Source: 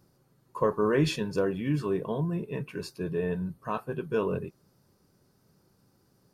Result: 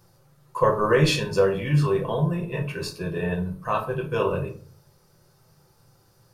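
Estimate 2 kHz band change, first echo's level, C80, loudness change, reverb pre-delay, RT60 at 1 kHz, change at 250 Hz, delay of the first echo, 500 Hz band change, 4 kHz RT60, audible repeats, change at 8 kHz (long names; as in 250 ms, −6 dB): +8.5 dB, no echo audible, 15.5 dB, +6.0 dB, 6 ms, 0.40 s, +2.5 dB, no echo audible, +5.5 dB, 0.25 s, no echo audible, +8.5 dB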